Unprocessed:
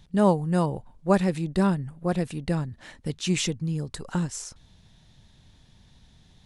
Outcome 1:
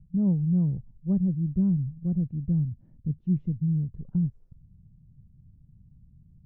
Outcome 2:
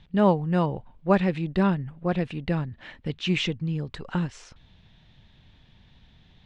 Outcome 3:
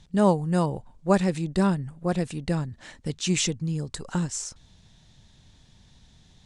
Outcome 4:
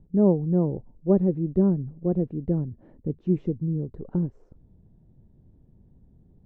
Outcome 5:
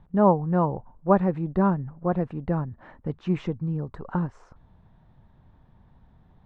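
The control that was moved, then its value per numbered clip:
resonant low-pass, frequency: 150 Hz, 2.9 kHz, 7.9 kHz, 390 Hz, 1.1 kHz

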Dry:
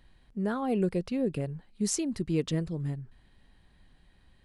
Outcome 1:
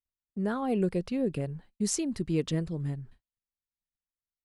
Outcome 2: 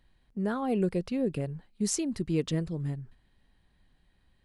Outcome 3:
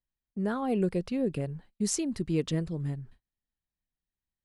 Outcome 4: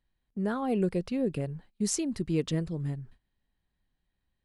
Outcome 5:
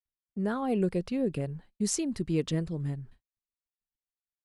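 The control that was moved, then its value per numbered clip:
gate, range: -46 dB, -6 dB, -33 dB, -19 dB, -58 dB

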